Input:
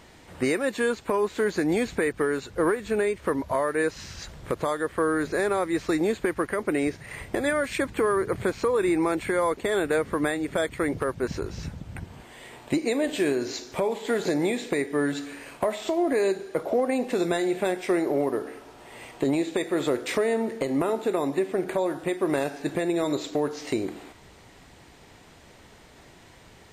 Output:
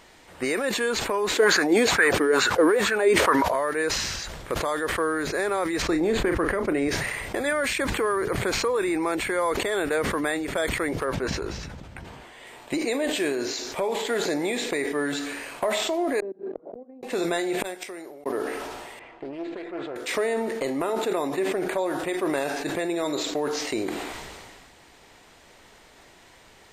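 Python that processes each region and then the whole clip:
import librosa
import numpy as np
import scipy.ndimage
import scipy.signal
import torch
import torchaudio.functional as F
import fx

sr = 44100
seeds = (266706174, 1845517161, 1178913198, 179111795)

y = fx.chain(x, sr, fx.highpass(hz=89.0, slope=12),
    fx.low_shelf(hz=420.0, db=-5.0),
    fx.bell_lfo(hz=2.2, low_hz=280.0, high_hz=1600.0, db=14), at=(1.32, 3.54))
y = fx.chain(y, sr, fx.tilt_eq(slope=-2.0),
    fx.doubler(ms=36.0, db=-12.0), at=(5.82, 6.89))
y = fx.chain(y, sr, fx.high_shelf(hz=7400.0, db=-9.0),
    fx.doubler(ms=15.0, db=-13.0), at=(11.05, 12.47))
y = fx.chain(y, sr, fx.level_steps(step_db=23),
    fx.ladder_bandpass(hz=270.0, resonance_pct=35),
    fx.gate_flip(shuts_db=-32.0, range_db=-34), at=(16.2, 17.03))
y = fx.chain(y, sr, fx.high_shelf(hz=4200.0, db=7.5),
    fx.gate_flip(shuts_db=-22.0, range_db=-36),
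    fx.upward_expand(threshold_db=-56.0, expansion=1.5), at=(17.6, 18.26))
y = fx.chain(y, sr, fx.lowpass(hz=2200.0, slope=12),
    fx.comb_fb(f0_hz=340.0, decay_s=0.36, harmonics='all', damping=0.0, mix_pct=70),
    fx.doppler_dist(depth_ms=0.29), at=(18.99, 19.96))
y = fx.peak_eq(y, sr, hz=110.0, db=-9.5, octaves=2.9)
y = fx.sustainer(y, sr, db_per_s=28.0)
y = y * librosa.db_to_amplitude(1.0)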